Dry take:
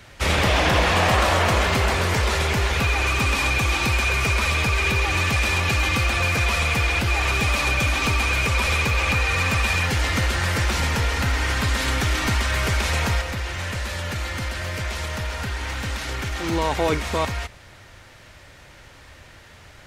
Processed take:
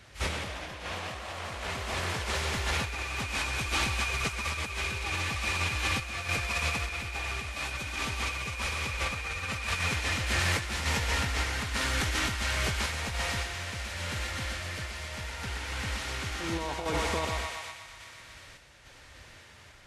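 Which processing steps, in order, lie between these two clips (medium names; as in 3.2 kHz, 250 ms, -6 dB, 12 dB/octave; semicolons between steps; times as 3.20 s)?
thinning echo 122 ms, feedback 80%, high-pass 560 Hz, level -4 dB; compressor with a negative ratio -21 dBFS, ratio -0.5; random-step tremolo; trim -7.5 dB; Vorbis 32 kbps 32 kHz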